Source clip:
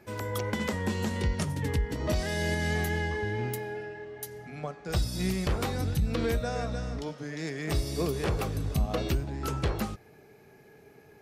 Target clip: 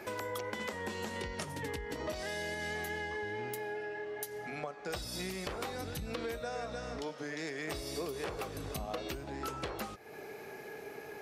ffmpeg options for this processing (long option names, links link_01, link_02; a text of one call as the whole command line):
ffmpeg -i in.wav -af "bass=frequency=250:gain=-14,treble=frequency=4000:gain=-2,acompressor=threshold=-51dB:ratio=4,volume=11.5dB" out.wav